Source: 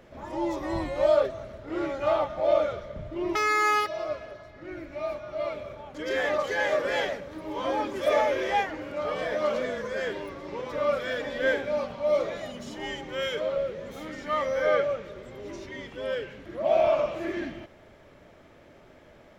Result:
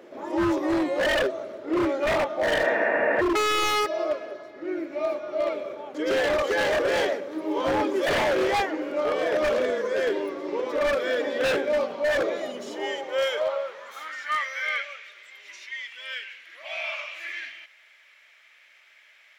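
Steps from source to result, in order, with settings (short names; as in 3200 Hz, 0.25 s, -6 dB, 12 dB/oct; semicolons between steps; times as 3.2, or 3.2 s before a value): high-pass sweep 340 Hz -> 2200 Hz, 12.53–14.66; wavefolder -20.5 dBFS; spectral repair 2.53–3.19, 210–2800 Hz before; gain +2.5 dB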